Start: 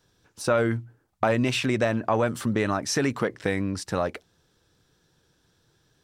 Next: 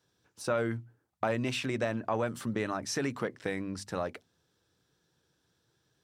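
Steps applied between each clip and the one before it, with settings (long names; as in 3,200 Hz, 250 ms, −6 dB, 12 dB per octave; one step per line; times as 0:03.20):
high-pass filter 70 Hz
mains-hum notches 50/100/150/200/250 Hz
level −7.5 dB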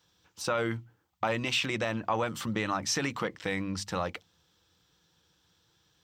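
thirty-one-band graphic EQ 125 Hz −10 dB, 250 Hz −11 dB, 400 Hz −11 dB, 630 Hz −8 dB, 1,600 Hz −5 dB, 3,150 Hz +4 dB, 10,000 Hz −12 dB
in parallel at +2.5 dB: brickwall limiter −26.5 dBFS, peak gain reduction 7.5 dB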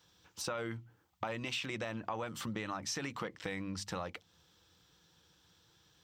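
downward compressor 2.5 to 1, threshold −42 dBFS, peak gain reduction 12 dB
level +1.5 dB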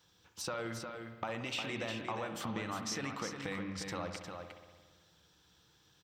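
single-tap delay 356 ms −6.5 dB
spring reverb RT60 1.5 s, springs 57 ms, chirp 20 ms, DRR 7.5 dB
level −1 dB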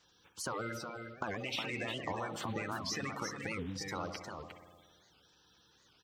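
spectral magnitudes quantised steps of 30 dB
wow of a warped record 78 rpm, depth 250 cents
level +1 dB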